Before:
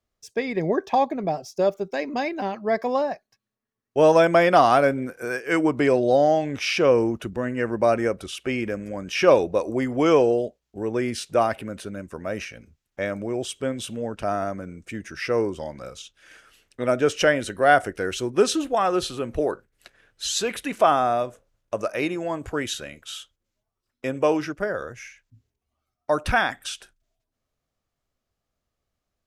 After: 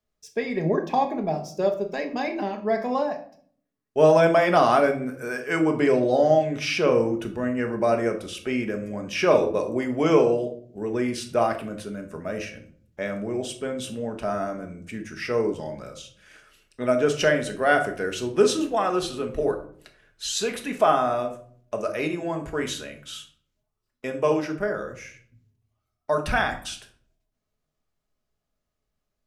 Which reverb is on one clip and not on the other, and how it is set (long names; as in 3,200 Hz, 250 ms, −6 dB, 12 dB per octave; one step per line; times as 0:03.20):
rectangular room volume 640 cubic metres, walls furnished, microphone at 1.4 metres
level −3 dB